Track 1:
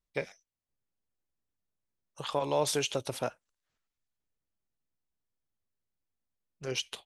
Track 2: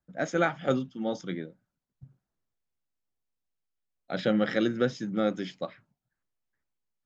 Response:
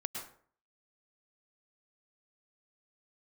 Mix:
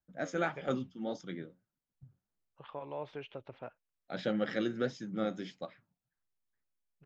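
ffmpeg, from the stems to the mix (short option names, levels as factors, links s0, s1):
-filter_complex "[0:a]lowpass=f=2600:w=0.5412,lowpass=f=2600:w=1.3066,adelay=400,volume=0.251[s0];[1:a]flanger=delay=1.2:depth=10:regen=71:speed=1.6:shape=sinusoidal,volume=0.75[s1];[s0][s1]amix=inputs=2:normalize=0"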